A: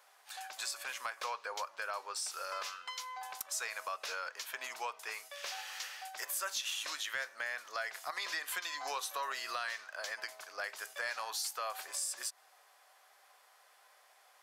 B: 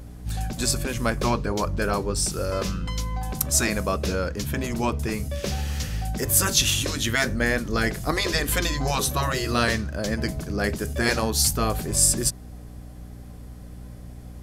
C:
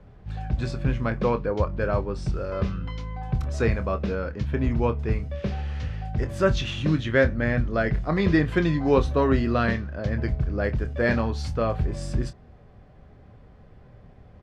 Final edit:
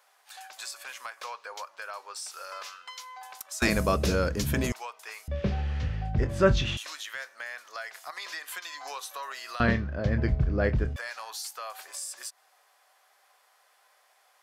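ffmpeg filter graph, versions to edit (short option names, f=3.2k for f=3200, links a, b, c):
-filter_complex "[2:a]asplit=2[a][b];[0:a]asplit=4[c][d][e][f];[c]atrim=end=3.622[g];[1:a]atrim=start=3.618:end=4.722[h];[d]atrim=start=4.718:end=5.282[i];[a]atrim=start=5.278:end=6.772[j];[e]atrim=start=6.768:end=9.602[k];[b]atrim=start=9.598:end=10.962[l];[f]atrim=start=10.958[m];[g][h]acrossfade=d=0.004:c1=hsin:c2=hsin[n];[n][i]acrossfade=d=0.004:c1=hsin:c2=hsin[o];[o][j]acrossfade=d=0.004:c1=hsin:c2=hsin[p];[p][k]acrossfade=d=0.004:c1=hsin:c2=hsin[q];[q][l]acrossfade=d=0.004:c1=hsin:c2=hsin[r];[r][m]acrossfade=d=0.004:c1=hsin:c2=hsin"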